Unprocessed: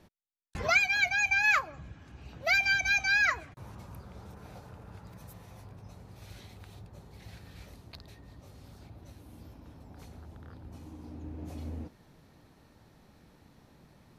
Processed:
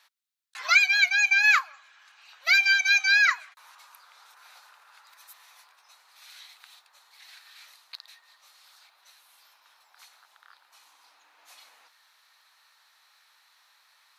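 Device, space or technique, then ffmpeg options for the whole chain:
headphones lying on a table: -af "highpass=f=1100:w=0.5412,highpass=f=1100:w=1.3066,equalizer=f=4000:t=o:w=0.37:g=5,volume=1.88"

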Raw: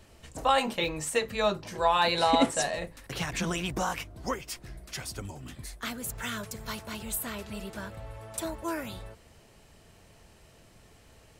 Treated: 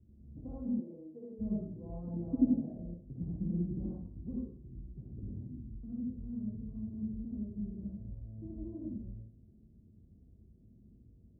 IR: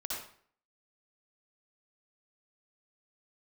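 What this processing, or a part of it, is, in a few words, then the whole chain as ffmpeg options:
next room: -filter_complex "[0:a]lowpass=f=270:w=0.5412,lowpass=f=270:w=1.3066[s0];[1:a]atrim=start_sample=2205[s1];[s0][s1]afir=irnorm=-1:irlink=0,highpass=60,asplit=3[s2][s3][s4];[s2]afade=t=out:st=0.8:d=0.02[s5];[s3]highpass=410,afade=t=in:st=0.8:d=0.02,afade=t=out:st=1.38:d=0.02[s6];[s4]afade=t=in:st=1.38:d=0.02[s7];[s5][s6][s7]amix=inputs=3:normalize=0,volume=1.12"

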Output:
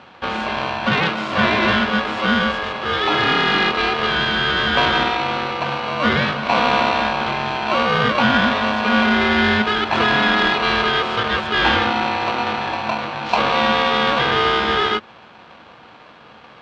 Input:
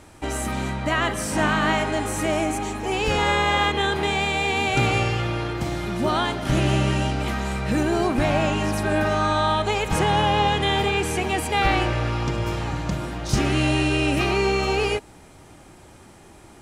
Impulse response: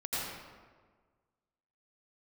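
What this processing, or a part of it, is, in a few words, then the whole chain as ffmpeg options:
ring modulator pedal into a guitar cabinet: -af "aeval=exprs='val(0)*sgn(sin(2*PI*840*n/s))':c=same,highpass=76,equalizer=f=140:t=q:w=4:g=6,equalizer=f=220:t=q:w=4:g=8,equalizer=f=320:t=q:w=4:g=4,equalizer=f=1400:t=q:w=4:g=5,equalizer=f=3300:t=q:w=4:g=4,lowpass=f=4000:w=0.5412,lowpass=f=4000:w=1.3066,volume=1.33"

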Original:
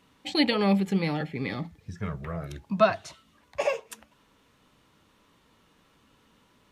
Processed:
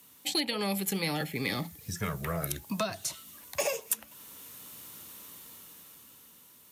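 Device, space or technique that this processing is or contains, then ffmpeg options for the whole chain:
FM broadcast chain: -filter_complex "[0:a]highpass=74,dynaudnorm=f=220:g=13:m=3.55,acrossover=split=410|4100[s0][s1][s2];[s0]acompressor=threshold=0.0355:ratio=4[s3];[s1]acompressor=threshold=0.0398:ratio=4[s4];[s2]acompressor=threshold=0.00631:ratio=4[s5];[s3][s4][s5]amix=inputs=3:normalize=0,aemphasis=mode=production:type=50fm,alimiter=limit=0.158:level=0:latency=1:release=414,asoftclip=type=hard:threshold=0.126,lowpass=f=15000:w=0.5412,lowpass=f=15000:w=1.3066,aemphasis=mode=production:type=50fm,volume=0.708"

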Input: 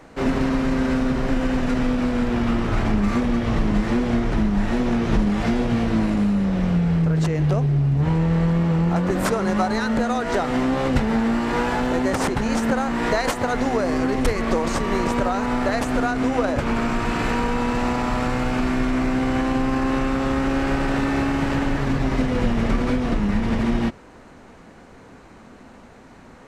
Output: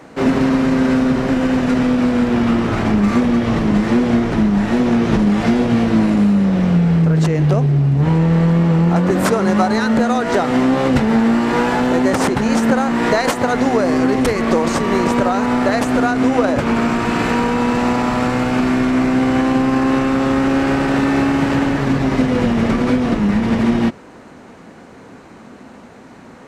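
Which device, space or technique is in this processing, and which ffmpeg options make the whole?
filter by subtraction: -filter_complex "[0:a]asplit=2[s0][s1];[s1]lowpass=200,volume=-1[s2];[s0][s2]amix=inputs=2:normalize=0,volume=1.78"

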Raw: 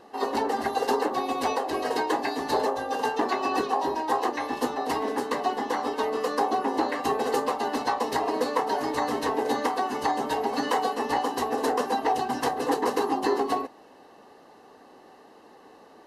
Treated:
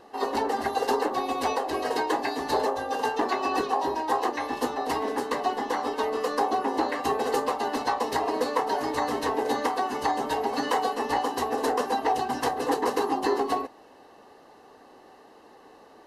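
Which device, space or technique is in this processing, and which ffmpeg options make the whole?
low shelf boost with a cut just above: -af "lowshelf=f=90:g=5.5,equalizer=f=190:t=o:w=1.1:g=-3.5"

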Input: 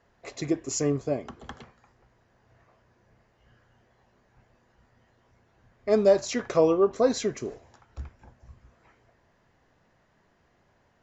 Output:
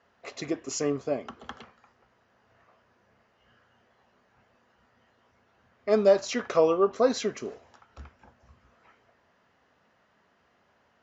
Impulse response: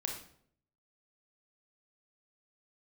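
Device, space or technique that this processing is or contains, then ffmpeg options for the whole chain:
car door speaker: -af "highpass=100,equalizer=f=110:t=q:w=4:g=-8,equalizer=f=150:t=q:w=4:g=-7,equalizer=f=330:t=q:w=4:g=-5,equalizer=f=1300:t=q:w=4:g=5,equalizer=f=2900:t=q:w=4:g=4,lowpass=f=6600:w=0.5412,lowpass=f=6600:w=1.3066"

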